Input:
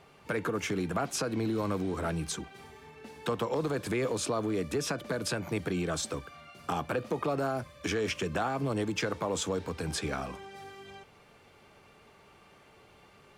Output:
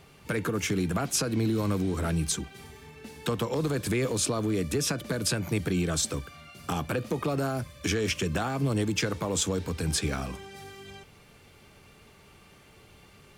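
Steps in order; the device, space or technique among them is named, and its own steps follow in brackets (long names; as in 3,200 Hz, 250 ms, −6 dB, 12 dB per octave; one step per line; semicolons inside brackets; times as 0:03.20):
smiley-face EQ (low-shelf EQ 120 Hz +5.5 dB; parametric band 810 Hz −6.5 dB 2.3 octaves; high-shelf EQ 8,500 Hz +7 dB)
level +5 dB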